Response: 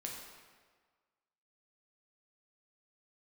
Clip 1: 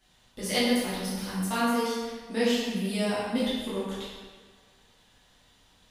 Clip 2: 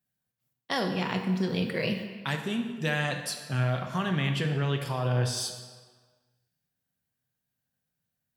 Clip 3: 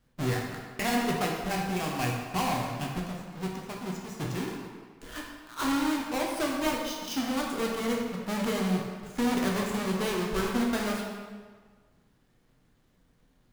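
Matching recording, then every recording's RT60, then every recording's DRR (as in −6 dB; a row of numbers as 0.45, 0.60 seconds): 3; 1.6, 1.6, 1.6 seconds; −10.5, 4.0, −1.5 decibels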